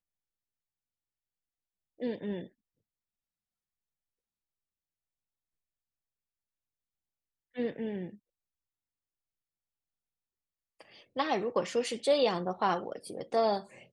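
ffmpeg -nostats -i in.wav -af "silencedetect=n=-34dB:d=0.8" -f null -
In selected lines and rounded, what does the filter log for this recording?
silence_start: 0.00
silence_end: 2.02 | silence_duration: 2.02
silence_start: 2.42
silence_end: 7.58 | silence_duration: 5.16
silence_start: 8.06
silence_end: 11.16 | silence_duration: 3.10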